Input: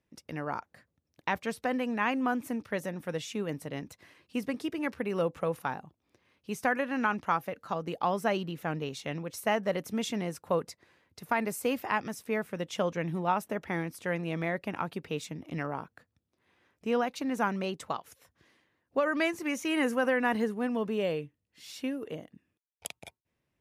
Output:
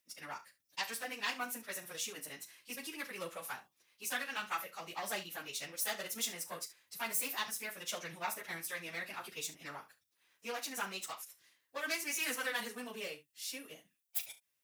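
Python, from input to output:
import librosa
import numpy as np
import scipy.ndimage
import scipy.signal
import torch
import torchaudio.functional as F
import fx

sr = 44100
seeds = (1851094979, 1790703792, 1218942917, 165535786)

y = fx.self_delay(x, sr, depth_ms=0.096)
y = fx.stretch_vocoder_free(y, sr, factor=0.62)
y = scipy.signal.lfilter([1.0, -0.97], [1.0], y)
y = fx.room_early_taps(y, sr, ms=(36, 69), db=(-12.0, -16.0))
y = F.gain(torch.from_numpy(y), 11.0).numpy()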